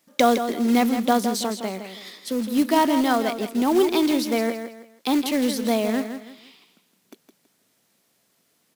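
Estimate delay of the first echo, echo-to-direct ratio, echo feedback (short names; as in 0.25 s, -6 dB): 0.163 s, -8.5 dB, 30%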